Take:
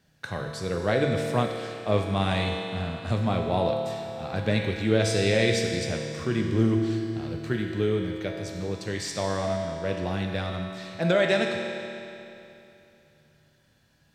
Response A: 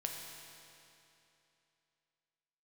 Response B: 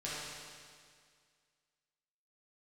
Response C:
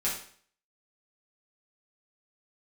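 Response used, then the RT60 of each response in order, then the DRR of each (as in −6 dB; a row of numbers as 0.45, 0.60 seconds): A; 2.9, 2.0, 0.50 seconds; 0.5, −9.0, −7.5 decibels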